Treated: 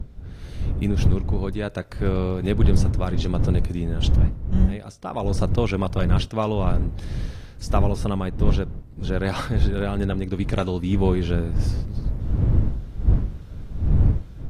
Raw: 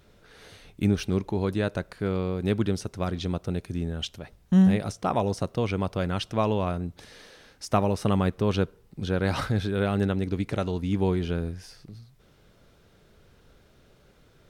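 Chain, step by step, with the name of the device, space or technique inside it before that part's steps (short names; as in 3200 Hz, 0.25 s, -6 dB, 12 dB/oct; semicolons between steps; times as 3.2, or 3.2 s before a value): smartphone video outdoors (wind noise 85 Hz -22 dBFS; AGC gain up to 12.5 dB; gain -5 dB; AAC 48 kbps 32000 Hz)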